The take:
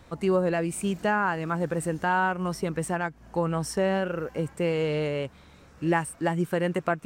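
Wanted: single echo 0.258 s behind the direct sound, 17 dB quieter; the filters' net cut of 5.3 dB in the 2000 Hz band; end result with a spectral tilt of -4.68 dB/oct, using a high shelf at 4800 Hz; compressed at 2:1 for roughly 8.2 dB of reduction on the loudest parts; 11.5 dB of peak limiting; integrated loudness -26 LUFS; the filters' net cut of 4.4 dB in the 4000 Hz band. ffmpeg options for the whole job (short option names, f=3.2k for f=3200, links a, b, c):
-af "equalizer=f=2k:t=o:g=-7.5,equalizer=f=4k:t=o:g=-7.5,highshelf=f=4.8k:g=7.5,acompressor=threshold=-36dB:ratio=2,alimiter=level_in=6.5dB:limit=-24dB:level=0:latency=1,volume=-6.5dB,aecho=1:1:258:0.141,volume=13dB"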